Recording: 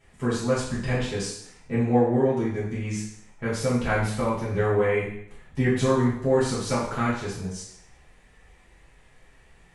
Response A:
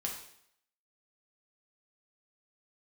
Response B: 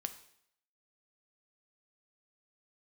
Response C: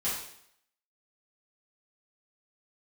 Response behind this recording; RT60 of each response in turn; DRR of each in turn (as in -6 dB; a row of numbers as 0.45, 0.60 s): C; 0.70, 0.70, 0.70 s; -1.0, 8.5, -10.5 dB